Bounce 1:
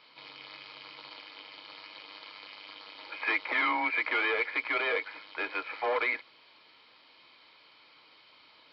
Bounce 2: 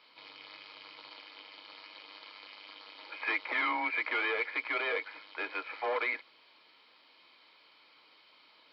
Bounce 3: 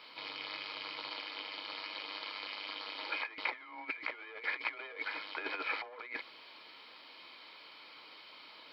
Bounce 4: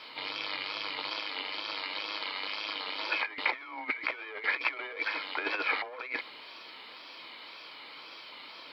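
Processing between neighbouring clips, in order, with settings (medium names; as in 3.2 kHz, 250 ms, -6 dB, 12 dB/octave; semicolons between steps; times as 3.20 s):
high-pass 180 Hz 12 dB/octave; trim -3 dB
compressor with a negative ratio -40 dBFS, ratio -0.5; trim +1.5 dB
wow and flutter 84 cents; trim +6.5 dB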